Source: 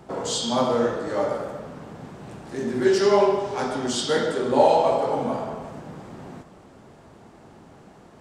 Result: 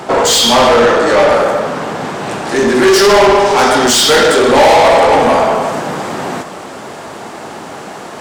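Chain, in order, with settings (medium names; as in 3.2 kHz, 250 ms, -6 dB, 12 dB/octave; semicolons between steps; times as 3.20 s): treble shelf 8.7 kHz +3 dB, from 2.75 s +10.5 dB; overdrive pedal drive 29 dB, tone 5.9 kHz, clips at -4 dBFS; trim +3.5 dB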